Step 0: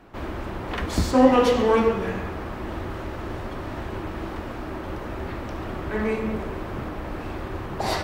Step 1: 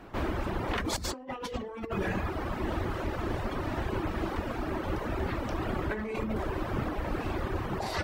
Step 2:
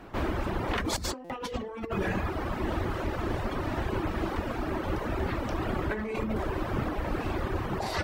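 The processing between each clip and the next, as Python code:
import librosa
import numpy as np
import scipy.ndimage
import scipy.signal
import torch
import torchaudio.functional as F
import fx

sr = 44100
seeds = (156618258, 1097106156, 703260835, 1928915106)

y1 = fx.dereverb_blind(x, sr, rt60_s=0.88)
y1 = fx.over_compress(y1, sr, threshold_db=-31.0, ratio=-1.0)
y1 = y1 * 10.0 ** (-1.5 / 20.0)
y2 = fx.buffer_glitch(y1, sr, at_s=(1.24,), block=256, repeats=9)
y2 = y2 * 10.0 ** (1.5 / 20.0)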